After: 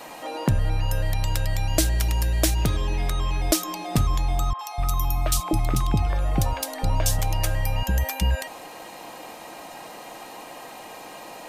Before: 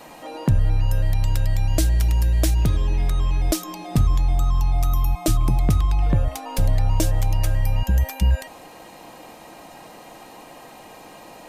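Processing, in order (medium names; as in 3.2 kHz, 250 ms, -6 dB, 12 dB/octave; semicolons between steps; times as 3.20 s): bass shelf 270 Hz -9 dB; 4.53–7.19 s: three bands offset in time mids, highs, lows 60/250 ms, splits 540/2600 Hz; trim +4 dB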